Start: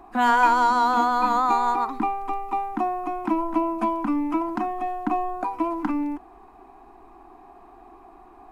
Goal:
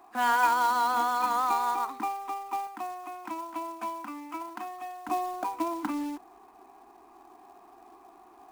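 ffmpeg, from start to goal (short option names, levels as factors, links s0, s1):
-af "asetnsamples=n=441:p=0,asendcmd='2.67 highpass f 1500;5.09 highpass f 280',highpass=f=670:p=1,acrusher=bits=4:mode=log:mix=0:aa=0.000001,volume=0.631"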